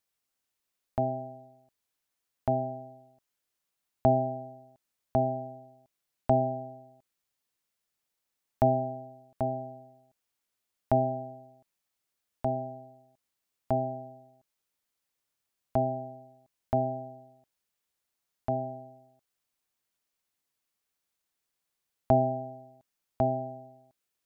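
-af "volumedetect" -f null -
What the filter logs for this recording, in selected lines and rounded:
mean_volume: -34.6 dB
max_volume: -10.1 dB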